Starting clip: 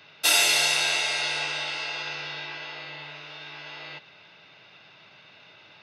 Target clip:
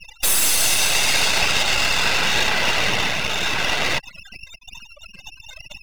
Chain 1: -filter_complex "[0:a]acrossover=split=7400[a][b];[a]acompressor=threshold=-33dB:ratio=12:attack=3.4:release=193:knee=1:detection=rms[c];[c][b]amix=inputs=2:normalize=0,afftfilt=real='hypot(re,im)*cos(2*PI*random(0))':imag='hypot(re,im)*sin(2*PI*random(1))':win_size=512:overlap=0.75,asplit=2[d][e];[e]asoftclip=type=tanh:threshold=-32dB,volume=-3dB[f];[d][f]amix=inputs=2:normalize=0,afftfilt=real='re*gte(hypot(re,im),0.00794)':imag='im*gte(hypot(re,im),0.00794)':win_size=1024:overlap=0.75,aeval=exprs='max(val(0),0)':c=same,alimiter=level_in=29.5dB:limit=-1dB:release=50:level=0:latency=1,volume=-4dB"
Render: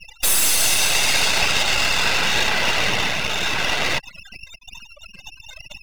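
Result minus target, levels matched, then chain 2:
soft clip: distortion +15 dB
-filter_complex "[0:a]acrossover=split=7400[a][b];[a]acompressor=threshold=-33dB:ratio=12:attack=3.4:release=193:knee=1:detection=rms[c];[c][b]amix=inputs=2:normalize=0,afftfilt=real='hypot(re,im)*cos(2*PI*random(0))':imag='hypot(re,im)*sin(2*PI*random(1))':win_size=512:overlap=0.75,asplit=2[d][e];[e]asoftclip=type=tanh:threshold=-21.5dB,volume=-3dB[f];[d][f]amix=inputs=2:normalize=0,afftfilt=real='re*gte(hypot(re,im),0.00794)':imag='im*gte(hypot(re,im),0.00794)':win_size=1024:overlap=0.75,aeval=exprs='max(val(0),0)':c=same,alimiter=level_in=29.5dB:limit=-1dB:release=50:level=0:latency=1,volume=-4dB"

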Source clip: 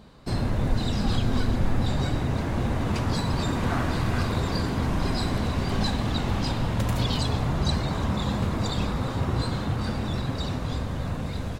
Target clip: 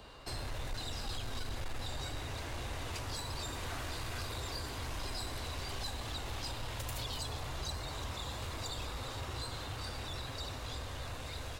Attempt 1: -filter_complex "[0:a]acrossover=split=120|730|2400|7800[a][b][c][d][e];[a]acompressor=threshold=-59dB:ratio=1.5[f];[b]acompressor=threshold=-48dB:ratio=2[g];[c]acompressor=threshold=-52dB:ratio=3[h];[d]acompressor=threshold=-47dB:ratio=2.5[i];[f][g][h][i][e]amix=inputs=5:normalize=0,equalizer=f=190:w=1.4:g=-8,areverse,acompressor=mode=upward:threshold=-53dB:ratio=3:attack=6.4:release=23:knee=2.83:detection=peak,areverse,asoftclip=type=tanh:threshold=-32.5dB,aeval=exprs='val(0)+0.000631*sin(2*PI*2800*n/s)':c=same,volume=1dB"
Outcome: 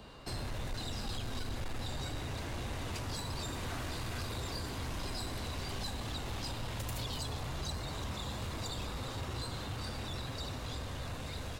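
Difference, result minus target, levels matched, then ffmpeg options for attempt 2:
250 Hz band +4.0 dB
-filter_complex "[0:a]acrossover=split=120|730|2400|7800[a][b][c][d][e];[a]acompressor=threshold=-59dB:ratio=1.5[f];[b]acompressor=threshold=-48dB:ratio=2[g];[c]acompressor=threshold=-52dB:ratio=3[h];[d]acompressor=threshold=-47dB:ratio=2.5[i];[f][g][h][i][e]amix=inputs=5:normalize=0,equalizer=f=190:w=1.4:g=-18,areverse,acompressor=mode=upward:threshold=-53dB:ratio=3:attack=6.4:release=23:knee=2.83:detection=peak,areverse,asoftclip=type=tanh:threshold=-32.5dB,aeval=exprs='val(0)+0.000631*sin(2*PI*2800*n/s)':c=same,volume=1dB"

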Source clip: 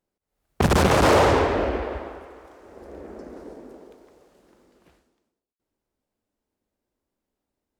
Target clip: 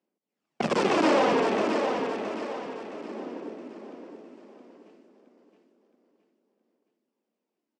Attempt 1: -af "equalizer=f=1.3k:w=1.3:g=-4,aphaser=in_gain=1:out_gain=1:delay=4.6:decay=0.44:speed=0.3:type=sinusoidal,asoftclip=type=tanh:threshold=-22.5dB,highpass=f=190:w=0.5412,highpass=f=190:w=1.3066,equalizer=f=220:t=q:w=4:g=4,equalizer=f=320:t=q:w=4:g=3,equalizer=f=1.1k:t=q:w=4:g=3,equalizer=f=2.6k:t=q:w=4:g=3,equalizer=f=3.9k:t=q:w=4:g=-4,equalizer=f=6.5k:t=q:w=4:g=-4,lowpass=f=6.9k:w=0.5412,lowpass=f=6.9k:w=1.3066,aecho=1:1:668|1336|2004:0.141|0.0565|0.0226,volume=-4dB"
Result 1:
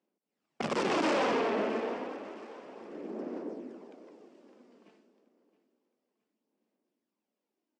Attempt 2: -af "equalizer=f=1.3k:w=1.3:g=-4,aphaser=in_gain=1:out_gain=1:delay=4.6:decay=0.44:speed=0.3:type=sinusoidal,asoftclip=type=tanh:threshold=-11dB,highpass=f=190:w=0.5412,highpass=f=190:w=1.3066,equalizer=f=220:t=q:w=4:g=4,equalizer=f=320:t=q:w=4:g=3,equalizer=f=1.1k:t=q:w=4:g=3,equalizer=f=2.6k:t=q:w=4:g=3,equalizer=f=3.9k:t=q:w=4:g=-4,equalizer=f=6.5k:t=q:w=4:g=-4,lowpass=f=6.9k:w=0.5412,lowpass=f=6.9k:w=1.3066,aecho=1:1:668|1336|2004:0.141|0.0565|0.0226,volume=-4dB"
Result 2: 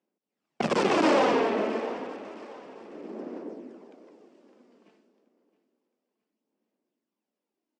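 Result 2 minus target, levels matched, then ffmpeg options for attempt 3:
echo-to-direct -10.5 dB
-af "equalizer=f=1.3k:w=1.3:g=-4,aphaser=in_gain=1:out_gain=1:delay=4.6:decay=0.44:speed=0.3:type=sinusoidal,asoftclip=type=tanh:threshold=-11dB,highpass=f=190:w=0.5412,highpass=f=190:w=1.3066,equalizer=f=220:t=q:w=4:g=4,equalizer=f=320:t=q:w=4:g=3,equalizer=f=1.1k:t=q:w=4:g=3,equalizer=f=2.6k:t=q:w=4:g=3,equalizer=f=3.9k:t=q:w=4:g=-4,equalizer=f=6.5k:t=q:w=4:g=-4,lowpass=f=6.9k:w=0.5412,lowpass=f=6.9k:w=1.3066,aecho=1:1:668|1336|2004|2672|3340:0.473|0.189|0.0757|0.0303|0.0121,volume=-4dB"

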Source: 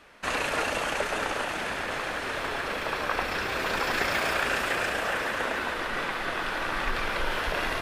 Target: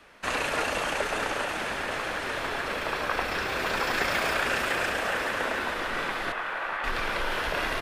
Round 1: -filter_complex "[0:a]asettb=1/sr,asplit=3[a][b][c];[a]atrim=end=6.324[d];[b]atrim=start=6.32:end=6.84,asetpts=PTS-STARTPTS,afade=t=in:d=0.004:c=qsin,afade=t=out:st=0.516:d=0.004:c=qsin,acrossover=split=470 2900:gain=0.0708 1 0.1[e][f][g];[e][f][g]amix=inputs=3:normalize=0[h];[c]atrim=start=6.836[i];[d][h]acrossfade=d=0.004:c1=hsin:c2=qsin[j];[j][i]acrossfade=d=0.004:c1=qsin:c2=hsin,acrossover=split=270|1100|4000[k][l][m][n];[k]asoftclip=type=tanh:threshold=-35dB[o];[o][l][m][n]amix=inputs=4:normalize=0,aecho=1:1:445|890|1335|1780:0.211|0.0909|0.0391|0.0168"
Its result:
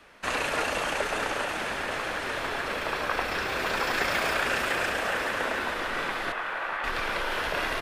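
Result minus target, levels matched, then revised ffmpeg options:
soft clip: distortion +7 dB
-filter_complex "[0:a]asettb=1/sr,asplit=3[a][b][c];[a]atrim=end=6.324[d];[b]atrim=start=6.32:end=6.84,asetpts=PTS-STARTPTS,afade=t=in:d=0.004:c=qsin,afade=t=out:st=0.516:d=0.004:c=qsin,acrossover=split=470 2900:gain=0.0708 1 0.1[e][f][g];[e][f][g]amix=inputs=3:normalize=0[h];[c]atrim=start=6.836[i];[d][h]acrossfade=d=0.004:c1=hsin:c2=qsin[j];[j][i]acrossfade=d=0.004:c1=qsin:c2=hsin,acrossover=split=270|1100|4000[k][l][m][n];[k]asoftclip=type=tanh:threshold=-27.5dB[o];[o][l][m][n]amix=inputs=4:normalize=0,aecho=1:1:445|890|1335|1780:0.211|0.0909|0.0391|0.0168"

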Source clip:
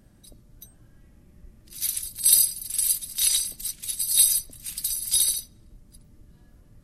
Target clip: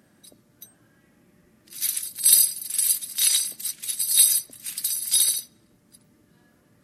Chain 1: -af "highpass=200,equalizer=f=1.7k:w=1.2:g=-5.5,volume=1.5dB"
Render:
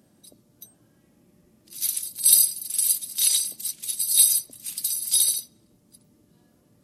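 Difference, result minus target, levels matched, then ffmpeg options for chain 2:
2000 Hz band -6.5 dB
-af "highpass=200,equalizer=f=1.7k:w=1.2:g=4.5,volume=1.5dB"

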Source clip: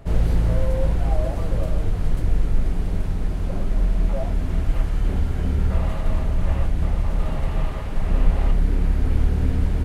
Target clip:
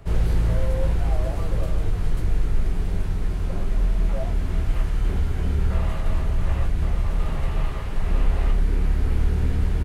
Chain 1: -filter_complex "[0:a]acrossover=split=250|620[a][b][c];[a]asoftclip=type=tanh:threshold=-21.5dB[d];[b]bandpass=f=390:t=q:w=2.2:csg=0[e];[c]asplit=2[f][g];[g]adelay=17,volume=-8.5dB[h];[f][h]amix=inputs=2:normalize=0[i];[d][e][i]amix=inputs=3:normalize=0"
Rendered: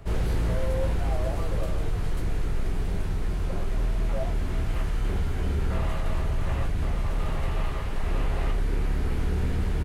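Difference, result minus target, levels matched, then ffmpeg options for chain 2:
soft clip: distortion +12 dB
-filter_complex "[0:a]acrossover=split=250|620[a][b][c];[a]asoftclip=type=tanh:threshold=-10.5dB[d];[b]bandpass=f=390:t=q:w=2.2:csg=0[e];[c]asplit=2[f][g];[g]adelay=17,volume=-8.5dB[h];[f][h]amix=inputs=2:normalize=0[i];[d][e][i]amix=inputs=3:normalize=0"

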